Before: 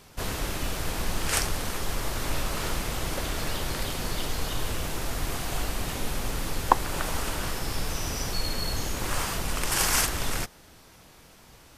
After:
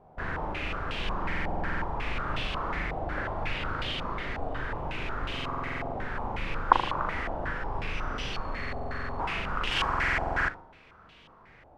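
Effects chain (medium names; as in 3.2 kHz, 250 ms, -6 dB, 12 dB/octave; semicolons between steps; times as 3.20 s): flutter echo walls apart 6.7 m, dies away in 0.59 s; buffer glitch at 1.24/5.34/8.59/9.88 s, samples 2048, times 12; step-sequenced low-pass 5.5 Hz 750–3000 Hz; trim -6 dB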